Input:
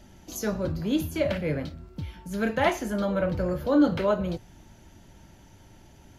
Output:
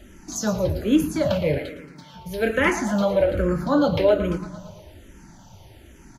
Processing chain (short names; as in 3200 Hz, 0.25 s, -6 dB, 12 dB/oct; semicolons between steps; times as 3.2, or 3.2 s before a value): 1.58–2.14 Bessel high-pass 750 Hz; feedback echo 0.113 s, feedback 59%, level -12 dB; endless phaser -1.2 Hz; gain +8 dB